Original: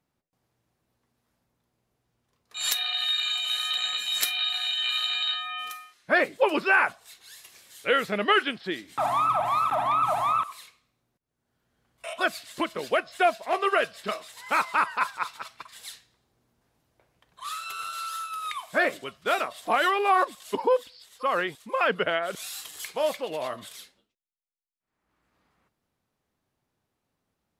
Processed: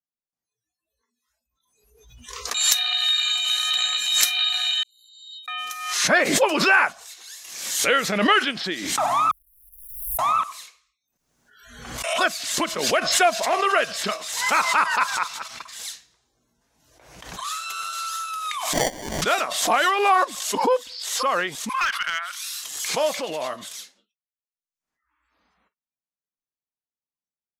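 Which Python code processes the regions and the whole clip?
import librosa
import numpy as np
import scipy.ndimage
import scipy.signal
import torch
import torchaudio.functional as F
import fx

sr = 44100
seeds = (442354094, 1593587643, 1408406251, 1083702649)

y = fx.chain(x, sr, fx.cheby2_highpass(hz=2000.0, order=4, stop_db=80),
    fx.air_absorb(metres=260.0), at=(4.83, 5.48))
y = fx.chain(y, sr, fx.law_mismatch(coded='A'),
    fx.cheby2_bandstop(low_hz=200.0, high_hz=4400.0, order=4, stop_db=70),
    fx.level_steps(step_db=16), at=(9.31, 10.19))
y = fx.chain(y, sr, fx.low_shelf(hz=350.0, db=-6.5),
    fx.sample_hold(seeds[0], rate_hz=1300.0, jitter_pct=0),
    fx.transformer_sat(knee_hz=150.0), at=(18.73, 19.22))
y = fx.chain(y, sr, fx.steep_highpass(hz=1000.0, slope=36),
    fx.clip_hard(threshold_db=-21.5),
    fx.peak_eq(hz=7100.0, db=-8.5, octaves=0.26), at=(21.69, 22.63))
y = fx.graphic_eq_15(y, sr, hz=(100, 400, 6300), db=(-11, -4, 9))
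y = fx.noise_reduce_blind(y, sr, reduce_db=29)
y = fx.pre_swell(y, sr, db_per_s=53.0)
y = y * 10.0 ** (3.5 / 20.0)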